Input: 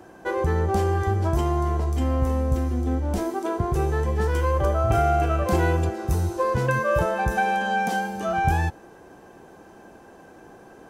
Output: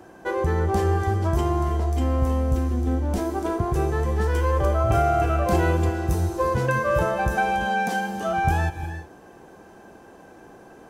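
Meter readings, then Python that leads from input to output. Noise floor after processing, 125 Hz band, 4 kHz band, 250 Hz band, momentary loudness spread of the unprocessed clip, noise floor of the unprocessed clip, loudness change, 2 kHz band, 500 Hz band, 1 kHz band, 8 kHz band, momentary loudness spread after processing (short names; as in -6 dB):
-48 dBFS, +0.5 dB, +0.5 dB, +1.0 dB, 5 LU, -48 dBFS, +0.5 dB, +0.5 dB, +0.5 dB, 0.0 dB, +0.5 dB, 5 LU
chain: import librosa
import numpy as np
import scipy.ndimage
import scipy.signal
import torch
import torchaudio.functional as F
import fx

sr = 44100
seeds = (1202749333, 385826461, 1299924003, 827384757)

y = fx.rev_gated(x, sr, seeds[0], gate_ms=380, shape='rising', drr_db=10.5)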